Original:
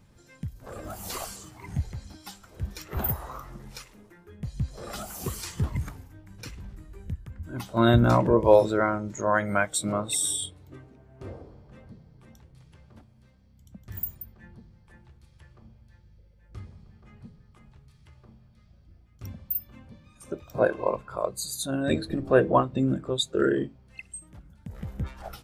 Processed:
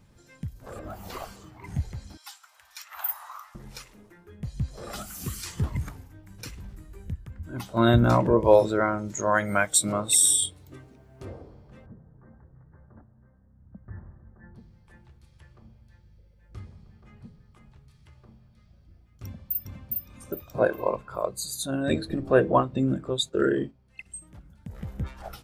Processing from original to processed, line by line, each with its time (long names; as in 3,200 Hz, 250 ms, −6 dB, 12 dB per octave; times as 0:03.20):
0:00.79–0:01.64: parametric band 9,200 Hz −15 dB 1.8 octaves
0:02.17–0:03.55: inverse Chebyshev high-pass filter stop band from 430 Hz
0:05.02–0:05.46: flat-topped bell 620 Hz −10.5 dB
0:06.23–0:07.09: high-shelf EQ 7,600 Hz +7 dB
0:08.98–0:11.25: high-shelf EQ 3,600 Hz +9 dB
0:11.86–0:14.55: Butterworth low-pass 1,800 Hz 72 dB per octave
0:19.24–0:19.89: delay throw 410 ms, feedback 25%, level −1.5 dB
0:23.16–0:24.06: noise gate −45 dBFS, range −7 dB